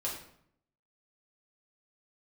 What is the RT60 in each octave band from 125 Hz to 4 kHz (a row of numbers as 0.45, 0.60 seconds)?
0.85, 0.85, 0.70, 0.65, 0.55, 0.50 seconds